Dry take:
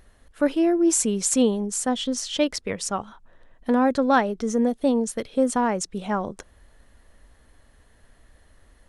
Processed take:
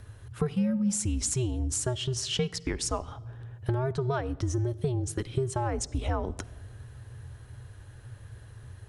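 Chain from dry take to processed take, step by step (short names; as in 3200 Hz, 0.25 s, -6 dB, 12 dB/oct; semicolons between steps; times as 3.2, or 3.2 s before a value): compressor 6:1, threshold -31 dBFS, peak gain reduction 16.5 dB; low shelf 250 Hz +5.5 dB; frequency shift -130 Hz; reverb RT60 1.3 s, pre-delay 5 ms, DRR 16 dB; gain +3 dB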